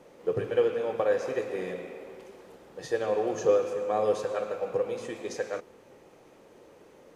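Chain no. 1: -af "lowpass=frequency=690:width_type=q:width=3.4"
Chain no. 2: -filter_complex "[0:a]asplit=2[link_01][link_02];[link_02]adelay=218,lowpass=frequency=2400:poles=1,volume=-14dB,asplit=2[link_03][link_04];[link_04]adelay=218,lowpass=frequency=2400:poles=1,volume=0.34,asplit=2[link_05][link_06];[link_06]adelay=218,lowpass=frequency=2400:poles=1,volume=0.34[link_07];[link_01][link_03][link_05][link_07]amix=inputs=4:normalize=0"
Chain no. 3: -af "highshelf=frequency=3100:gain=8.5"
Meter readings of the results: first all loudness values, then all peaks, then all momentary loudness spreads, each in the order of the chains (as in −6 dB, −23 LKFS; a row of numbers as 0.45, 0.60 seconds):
−24.0, −29.0, −29.0 LKFS; −6.5, −12.0, −11.5 dBFS; 17, 17, 16 LU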